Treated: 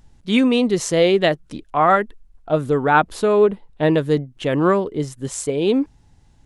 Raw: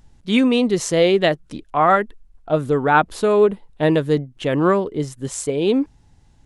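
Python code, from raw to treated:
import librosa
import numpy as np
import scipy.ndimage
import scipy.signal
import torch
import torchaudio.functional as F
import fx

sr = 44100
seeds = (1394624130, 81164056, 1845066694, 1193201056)

y = fx.high_shelf(x, sr, hz=9200.0, db=-12.0, at=(3.23, 3.98))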